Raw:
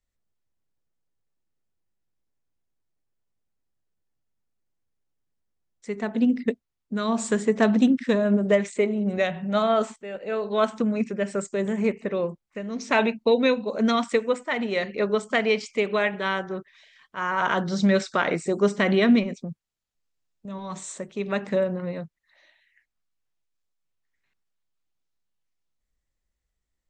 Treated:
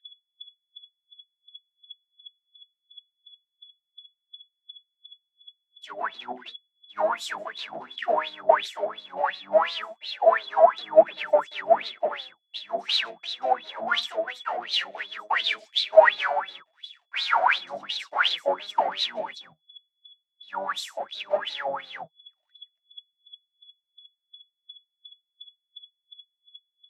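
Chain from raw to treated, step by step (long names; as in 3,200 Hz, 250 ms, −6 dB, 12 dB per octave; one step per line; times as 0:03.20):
high-pass filter 270 Hz 6 dB per octave
pitch-shifted copies added −5 semitones −8 dB, +4 semitones −12 dB, +7 semitones −3 dB
in parallel at +0.5 dB: brickwall limiter −12.5 dBFS, peak gain reduction 7.5 dB
on the sum: downward compressor 2.5 to 1, threshold −23 dBFS, peak gain reduction 10 dB
leveller curve on the samples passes 5
steady tone 3,400 Hz −31 dBFS
flanger 0.18 Hz, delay 6 ms, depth 7.1 ms, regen +50%
LFO wah 2.8 Hz 640–4,000 Hz, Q 14
multiband upward and downward expander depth 100%
level +2.5 dB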